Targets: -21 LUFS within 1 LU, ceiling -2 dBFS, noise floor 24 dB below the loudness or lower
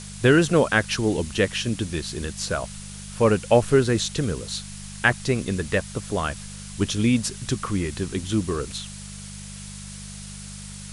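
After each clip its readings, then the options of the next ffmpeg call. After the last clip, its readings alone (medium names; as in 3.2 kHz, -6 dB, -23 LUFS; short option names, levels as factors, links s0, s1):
hum 50 Hz; highest harmonic 200 Hz; hum level -39 dBFS; noise floor -38 dBFS; noise floor target -48 dBFS; loudness -23.5 LUFS; peak level -2.5 dBFS; loudness target -21.0 LUFS
-> -af "bandreject=f=50:t=h:w=4,bandreject=f=100:t=h:w=4,bandreject=f=150:t=h:w=4,bandreject=f=200:t=h:w=4"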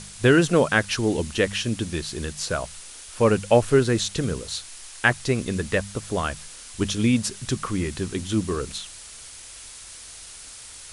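hum not found; noise floor -42 dBFS; noise floor target -48 dBFS
-> -af "afftdn=nr=6:nf=-42"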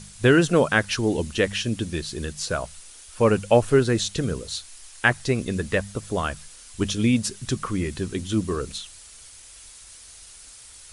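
noise floor -46 dBFS; noise floor target -48 dBFS
-> -af "afftdn=nr=6:nf=-46"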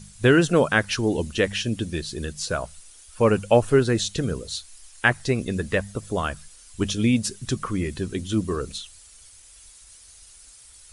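noise floor -49 dBFS; loudness -24.0 LUFS; peak level -2.0 dBFS; loudness target -21.0 LUFS
-> -af "volume=1.41,alimiter=limit=0.794:level=0:latency=1"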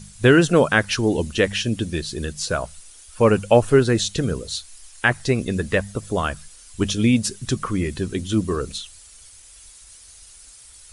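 loudness -21.0 LUFS; peak level -2.0 dBFS; noise floor -46 dBFS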